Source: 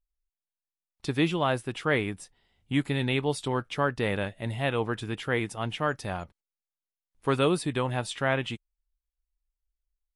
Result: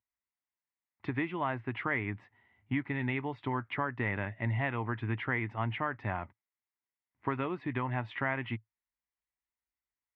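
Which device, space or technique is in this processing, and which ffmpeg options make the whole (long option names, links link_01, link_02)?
bass amplifier: -af "acompressor=threshold=-30dB:ratio=5,highpass=frequency=85:width=0.5412,highpass=frequency=85:width=1.3066,equalizer=frequency=110:width_type=q:width=4:gain=7,equalizer=frequency=160:width_type=q:width=4:gain=-8,equalizer=frequency=250:width_type=q:width=4:gain=3,equalizer=frequency=490:width_type=q:width=4:gain=-9,equalizer=frequency=970:width_type=q:width=4:gain=6,equalizer=frequency=2000:width_type=q:width=4:gain=9,lowpass=frequency=2400:width=0.5412,lowpass=frequency=2400:width=1.3066"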